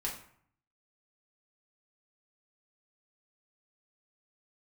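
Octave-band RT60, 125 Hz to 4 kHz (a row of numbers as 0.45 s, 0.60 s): 0.85 s, 0.70 s, 0.55 s, 0.65 s, 0.55 s, 0.40 s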